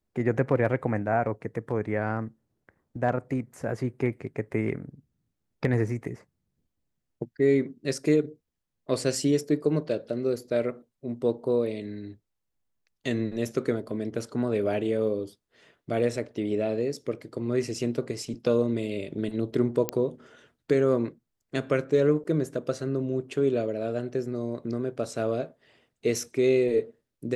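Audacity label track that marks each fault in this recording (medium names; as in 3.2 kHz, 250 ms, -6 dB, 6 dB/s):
19.890000	19.890000	pop -10 dBFS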